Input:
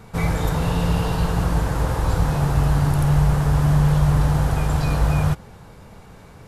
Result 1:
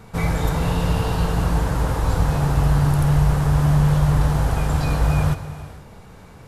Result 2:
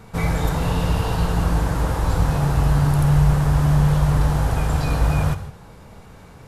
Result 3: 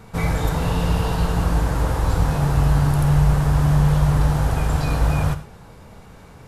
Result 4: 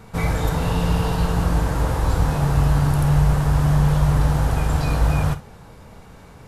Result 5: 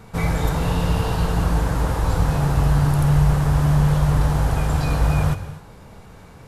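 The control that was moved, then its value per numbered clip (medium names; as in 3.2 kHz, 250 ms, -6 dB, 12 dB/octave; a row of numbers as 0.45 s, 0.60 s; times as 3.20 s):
gated-style reverb, gate: 500 ms, 190 ms, 130 ms, 80 ms, 290 ms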